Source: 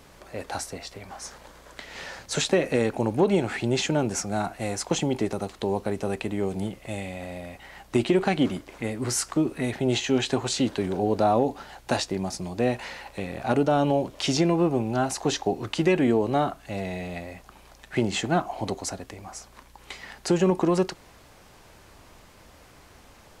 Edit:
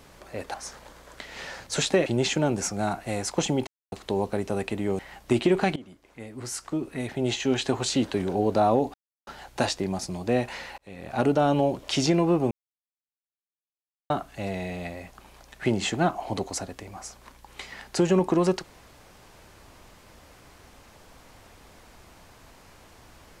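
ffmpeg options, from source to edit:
-filter_complex "[0:a]asplit=11[a][b][c][d][e][f][g][h][i][j][k];[a]atrim=end=0.542[l];[b]atrim=start=1.128:end=2.652[m];[c]atrim=start=3.588:end=5.2,asetpts=PTS-STARTPTS,afade=t=out:st=1.608:d=0.004:c=hsin[n];[d]atrim=start=5.2:end=5.45,asetpts=PTS-STARTPTS,volume=0[o];[e]atrim=start=5.45:end=6.522,asetpts=PTS-STARTPTS,afade=t=in:d=0.004:c=hsin[p];[f]atrim=start=7.628:end=8.4,asetpts=PTS-STARTPTS,afade=t=out:st=0.768:d=0.004:c=hsin:silence=0.0749894[q];[g]atrim=start=8.4:end=11.58,asetpts=PTS-STARTPTS,afade=t=in:d=2.07:silence=0.0749894,afade=t=out:st=3.176:d=0.004:c=hsin,apad=pad_dur=0.33[r];[h]atrim=start=11.58:end=13.09,asetpts=PTS-STARTPTS,afade=t=in:d=0.004:c=hsin,afade=t=out:st=1.506:d=0.004:c=hsin[s];[i]atrim=start=13.09:end=14.82,asetpts=PTS-STARTPTS,afade=t=in:d=0.46,afade=t=out:st=1.726:d=0.004:c=hsin[t];[j]atrim=start=14.82:end=16.41,asetpts=PTS-STARTPTS,volume=0[u];[k]atrim=start=16.41,asetpts=PTS-STARTPTS,afade=t=in:d=0.004:c=hsin[v];[l][m]acrossfade=d=0.004:c1=hsin:c2=hsin[w];[n][o][p]concat=n=3:v=0:a=1[x];[w][x]acrossfade=d=0.004:c1=hsin:c2=hsin[y];[q][r][s][t][u][v]concat=n=6:v=0:a=1[z];[y][z]acrossfade=d=0.004:c1=hsin:c2=hsin"

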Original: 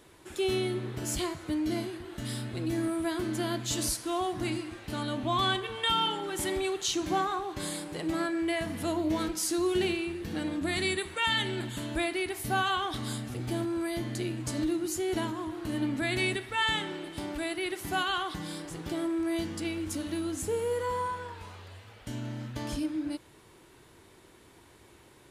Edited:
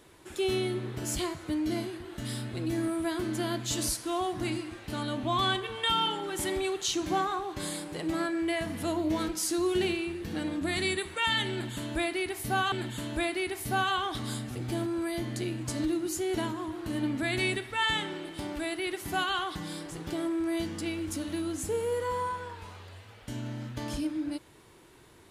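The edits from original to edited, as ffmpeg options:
-filter_complex "[0:a]asplit=2[a][b];[a]atrim=end=12.722[c];[b]atrim=start=11.508[d];[c][d]acrossfade=d=0.004:c1=hsin:c2=hsin"

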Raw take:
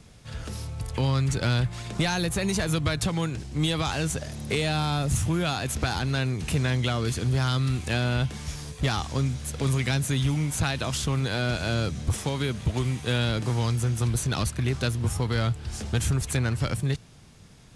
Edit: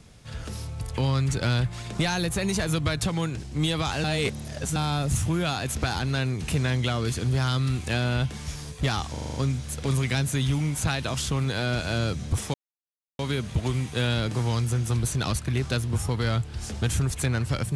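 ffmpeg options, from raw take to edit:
-filter_complex "[0:a]asplit=10[a][b][c][d][e][f][g][h][i][j];[a]atrim=end=4.042[k];[b]atrim=start=4.038:end=4.762,asetpts=PTS-STARTPTS,areverse[l];[c]atrim=start=4.758:end=9.152[m];[d]atrim=start=9.108:end=9.152[n];[e]atrim=start=9.108:end=9.152[o];[f]atrim=start=9.108:end=9.152[p];[g]atrim=start=9.108:end=9.152[q];[h]atrim=start=9.108:end=9.152[r];[i]atrim=start=9.108:end=12.3,asetpts=PTS-STARTPTS,afade=t=out:st=3.188:d=0.004:c=hsin,apad=pad_dur=0.65[s];[j]atrim=start=12.3,asetpts=PTS-STARTPTS,afade=t=in:d=0.004:c=hsin[t];[k][l]acrossfade=d=0.004:c1=hsin:c2=hsin[u];[u][m]acrossfade=d=0.004:c1=hsin:c2=hsin[v];[v][n]acrossfade=d=0.004:c1=hsin:c2=hsin[w];[w][o]acrossfade=d=0.004:c1=hsin:c2=hsin[x];[x][p]acrossfade=d=0.004:c1=hsin:c2=hsin[y];[y][q]acrossfade=d=0.004:c1=hsin:c2=hsin[z];[z][r]acrossfade=d=0.004:c1=hsin:c2=hsin[aa];[s][t]concat=n=2:v=0:a=1[ab];[aa][ab]acrossfade=d=0.004:c1=hsin:c2=hsin"

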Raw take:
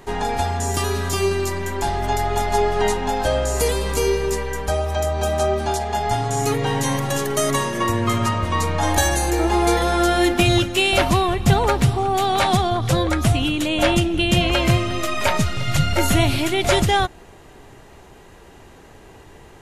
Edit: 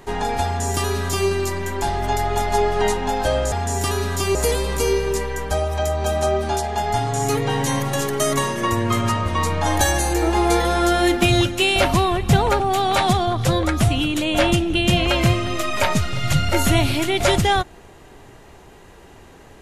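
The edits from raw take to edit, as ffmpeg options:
-filter_complex "[0:a]asplit=4[a][b][c][d];[a]atrim=end=3.522[e];[b]atrim=start=0.448:end=1.282[f];[c]atrim=start=3.518:end=11.772[g];[d]atrim=start=12.038[h];[e][f]acrossfade=d=0.004:c1=hsin:c2=hsin[i];[i][g]acrossfade=d=0.004:c1=hsin:c2=hsin[j];[j][h]acrossfade=d=0.004:c1=hsin:c2=hsin"

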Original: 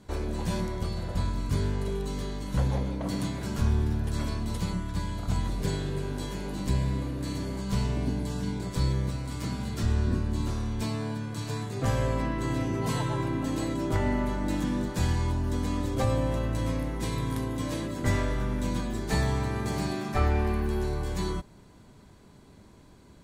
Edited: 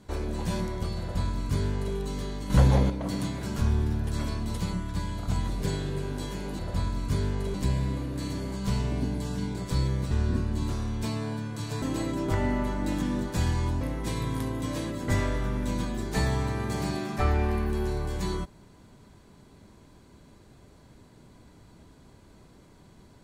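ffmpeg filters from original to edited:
-filter_complex "[0:a]asplit=8[a][b][c][d][e][f][g][h];[a]atrim=end=2.502[i];[b]atrim=start=2.498:end=2.902,asetpts=PTS-STARTPTS,volume=7dB[j];[c]atrim=start=2.898:end=6.592[k];[d]atrim=start=0.998:end=1.952[l];[e]atrim=start=6.588:end=9.162[m];[f]atrim=start=9.888:end=11.602[n];[g]atrim=start=13.438:end=15.432[o];[h]atrim=start=16.768[p];[i][j]acrossfade=d=0.004:c1=hsin:c2=hsin[q];[q][k]acrossfade=d=0.004:c1=hsin:c2=hsin[r];[r][l]acrossfade=d=0.004:c1=hsin:c2=hsin[s];[s][m]acrossfade=d=0.004:c1=hsin:c2=hsin[t];[t][n]acrossfade=d=0.004:c1=hsin:c2=hsin[u];[u][o]acrossfade=d=0.004:c1=hsin:c2=hsin[v];[v][p]acrossfade=d=0.004:c1=hsin:c2=hsin"

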